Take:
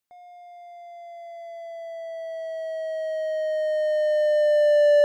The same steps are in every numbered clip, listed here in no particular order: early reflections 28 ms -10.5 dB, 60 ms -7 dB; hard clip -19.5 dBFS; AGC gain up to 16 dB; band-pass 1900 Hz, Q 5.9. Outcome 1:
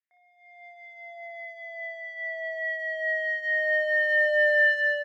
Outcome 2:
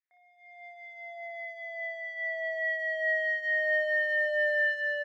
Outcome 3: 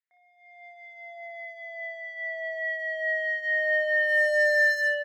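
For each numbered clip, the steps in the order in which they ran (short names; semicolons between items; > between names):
band-pass > hard clip > AGC > early reflections; early reflections > AGC > band-pass > hard clip; band-pass > AGC > hard clip > early reflections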